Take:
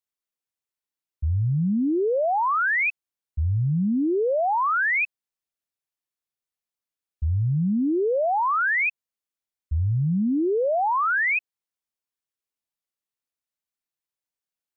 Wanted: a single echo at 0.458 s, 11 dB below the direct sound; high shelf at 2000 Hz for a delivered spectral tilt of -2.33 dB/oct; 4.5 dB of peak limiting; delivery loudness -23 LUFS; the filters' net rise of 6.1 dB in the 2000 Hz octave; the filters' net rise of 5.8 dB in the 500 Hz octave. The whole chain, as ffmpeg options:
-af "equalizer=f=500:t=o:g=7,highshelf=f=2k:g=-3.5,equalizer=f=2k:t=o:g=9,alimiter=limit=-16dB:level=0:latency=1,aecho=1:1:458:0.282,volume=-2.5dB"

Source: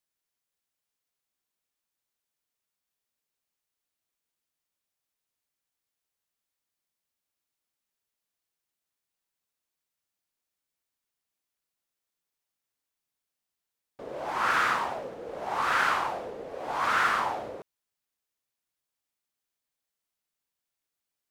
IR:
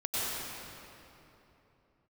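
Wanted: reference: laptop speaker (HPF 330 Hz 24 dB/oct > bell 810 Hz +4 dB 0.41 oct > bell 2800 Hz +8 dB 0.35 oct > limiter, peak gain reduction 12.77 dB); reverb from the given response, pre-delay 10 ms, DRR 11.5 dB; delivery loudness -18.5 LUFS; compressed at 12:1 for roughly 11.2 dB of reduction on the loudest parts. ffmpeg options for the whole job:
-filter_complex "[0:a]acompressor=threshold=-32dB:ratio=12,asplit=2[a][b];[1:a]atrim=start_sample=2205,adelay=10[c];[b][c]afir=irnorm=-1:irlink=0,volume=-20dB[d];[a][d]amix=inputs=2:normalize=0,highpass=f=330:w=0.5412,highpass=f=330:w=1.3066,equalizer=f=810:t=o:w=0.41:g=4,equalizer=f=2.8k:t=o:w=0.35:g=8,volume=25dB,alimiter=limit=-10dB:level=0:latency=1"

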